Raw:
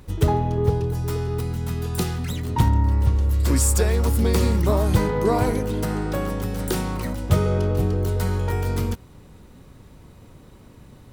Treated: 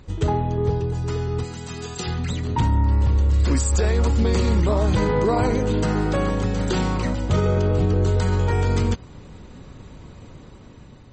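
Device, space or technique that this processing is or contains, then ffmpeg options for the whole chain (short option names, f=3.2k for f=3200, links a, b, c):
low-bitrate web radio: -filter_complex "[0:a]bandreject=f=5.4k:w=16,asplit=3[a][b][c];[a]afade=t=out:st=1.43:d=0.02[d];[b]aemphasis=mode=production:type=bsi,afade=t=in:st=1.43:d=0.02,afade=t=out:st=2.06:d=0.02[e];[c]afade=t=in:st=2.06:d=0.02[f];[d][e][f]amix=inputs=3:normalize=0,dynaudnorm=f=520:g=5:m=6dB,alimiter=limit=-11.5dB:level=0:latency=1:release=15" -ar 44100 -c:a libmp3lame -b:a 32k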